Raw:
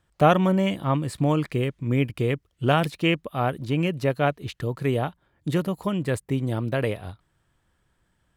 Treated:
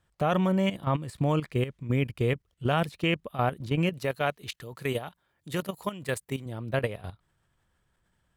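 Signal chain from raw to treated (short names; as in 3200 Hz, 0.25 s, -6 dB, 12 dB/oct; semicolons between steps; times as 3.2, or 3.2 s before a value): bell 300 Hz -4 dB 0.42 oct; level quantiser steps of 12 dB; 3.93–6.46 tilt +2 dB/oct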